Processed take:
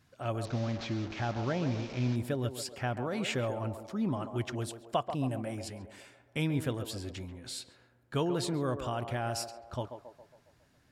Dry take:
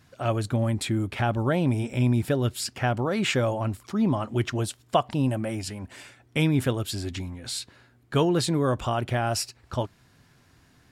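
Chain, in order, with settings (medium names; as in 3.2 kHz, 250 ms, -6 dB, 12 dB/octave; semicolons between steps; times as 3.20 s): 0.45–2.16 s: one-bit delta coder 32 kbps, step -30.5 dBFS; band-passed feedback delay 137 ms, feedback 56%, band-pass 600 Hz, level -7 dB; trim -8.5 dB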